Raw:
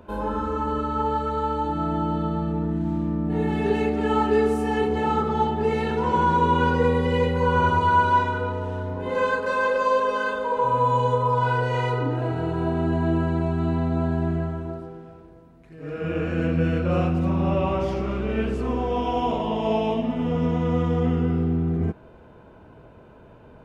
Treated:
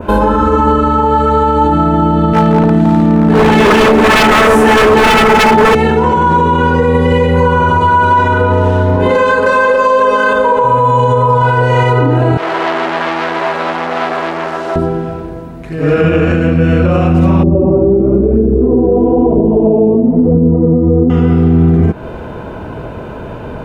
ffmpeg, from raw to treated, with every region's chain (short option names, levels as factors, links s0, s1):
-filter_complex "[0:a]asettb=1/sr,asplit=3[s0][s1][s2];[s0]atrim=end=2.334[s3];[s1]atrim=start=2.33:end=5.75,asetpts=PTS-STARTPTS,afade=t=in:d=0.004:c=qsin,afade=t=out:st=3.416:d=0.004:c=qsin,highpass=f=230:p=1,aecho=1:1:4.6:0.44,atrim=end_sample=150822,aeval=exprs='0.0841*(abs(mod(val(0)/0.0841+3,4)-2)-1)':c=same[s4];[s2]atrim=start=5.746[s5];[s3][s4]acrossfade=d=0.004:c1=hsin:c2=qsin[s6];[s6][s5]acrossfade=d=0.004:c1=qsin:c2=hsin,asettb=1/sr,asplit=3[s7][s8][s9];[s7]atrim=end=12.374[s10];[s8]atrim=start=12.37:end=14.76,asetpts=PTS-STARTPTS,afade=t=in:d=0.004:c=qsin,afade=t=out:st=2.386:d=0.004:c=qsin,acrusher=bits=7:mix=0:aa=0.5,asoftclip=type=hard:threshold=0.0299,highpass=570,lowpass=4700[s11];[s9]atrim=start=14.756[s12];[s10][s11]acrossfade=d=0.004:c1=hsin:c2=qsin[s13];[s13][s12]acrossfade=d=0.004:c1=qsin:c2=hsin,asettb=1/sr,asplit=3[s14][s15][s16];[s14]atrim=end=17.434[s17];[s15]atrim=start=17.43:end=21.1,asetpts=PTS-STARTPTS,afade=t=in:d=0.004:c=qsin,afade=t=out:st=3.666:d=0.004:c=qsin,lowpass=f=390:t=q:w=2.3,flanger=delay=0.2:depth=9.7:regen=31:speed=1:shape=sinusoidal[s18];[s16]atrim=start=21.096[s19];[s17][s18]acrossfade=d=0.004:c1=hsin:c2=qsin[s20];[s20][s19]acrossfade=d=0.004:c1=qsin:c2=hsin,adynamicequalizer=threshold=0.00501:dfrequency=4300:dqfactor=1.3:tfrequency=4300:tqfactor=1.3:attack=5:release=100:ratio=0.375:range=2.5:mode=cutabove:tftype=bell,acompressor=threshold=0.0355:ratio=3,alimiter=level_in=16.8:limit=0.891:release=50:level=0:latency=1,volume=0.891"